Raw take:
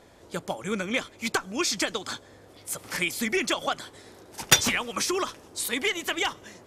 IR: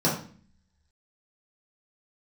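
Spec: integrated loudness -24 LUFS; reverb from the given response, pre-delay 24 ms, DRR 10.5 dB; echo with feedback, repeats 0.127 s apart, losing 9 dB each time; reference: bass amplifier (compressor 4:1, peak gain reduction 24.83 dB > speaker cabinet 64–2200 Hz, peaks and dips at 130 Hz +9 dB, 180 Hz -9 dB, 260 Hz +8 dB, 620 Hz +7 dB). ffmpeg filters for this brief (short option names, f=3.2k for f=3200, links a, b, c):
-filter_complex "[0:a]aecho=1:1:127|254|381|508:0.355|0.124|0.0435|0.0152,asplit=2[a][b];[1:a]atrim=start_sample=2205,adelay=24[c];[b][c]afir=irnorm=-1:irlink=0,volume=-24dB[d];[a][d]amix=inputs=2:normalize=0,acompressor=threshold=-43dB:ratio=4,highpass=f=64:w=0.5412,highpass=f=64:w=1.3066,equalizer=f=130:t=q:w=4:g=9,equalizer=f=180:t=q:w=4:g=-9,equalizer=f=260:t=q:w=4:g=8,equalizer=f=620:t=q:w=4:g=7,lowpass=f=2.2k:w=0.5412,lowpass=f=2.2k:w=1.3066,volume=20dB"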